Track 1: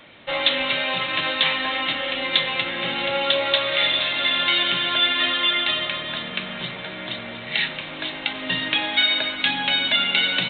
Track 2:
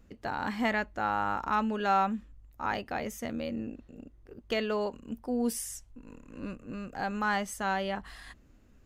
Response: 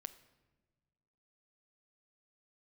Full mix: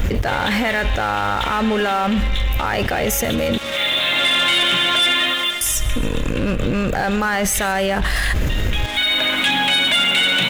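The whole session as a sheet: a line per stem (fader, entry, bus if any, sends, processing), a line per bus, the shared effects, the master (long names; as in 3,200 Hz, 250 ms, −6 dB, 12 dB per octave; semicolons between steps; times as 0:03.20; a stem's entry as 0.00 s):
+2.0 dB, 0.00 s, no send, no echo send, automatic ducking −17 dB, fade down 0.50 s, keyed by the second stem
+3.0 dB, 0.00 s, muted 0:03.58–0:05.61, no send, echo send −20 dB, octave-band graphic EQ 250/1,000/4,000/8,000 Hz −11/−9/−6/−5 dB; envelope flattener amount 100%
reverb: not used
echo: repeating echo 139 ms, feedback 56%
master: leveller curve on the samples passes 3; brickwall limiter −11 dBFS, peak gain reduction 9 dB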